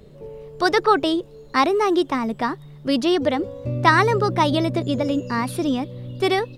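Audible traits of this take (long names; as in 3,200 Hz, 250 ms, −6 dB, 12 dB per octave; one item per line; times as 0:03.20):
background noise floor −44 dBFS
spectral slope −4.0 dB per octave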